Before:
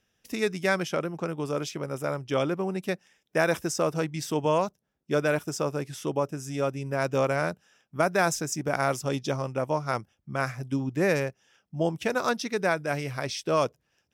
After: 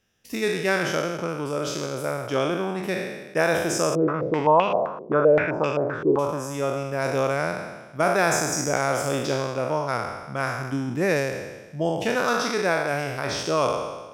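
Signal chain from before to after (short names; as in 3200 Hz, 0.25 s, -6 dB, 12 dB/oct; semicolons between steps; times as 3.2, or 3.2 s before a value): spectral trails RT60 1.25 s; 3.95–6.19 stepped low-pass 7.7 Hz 390–2700 Hz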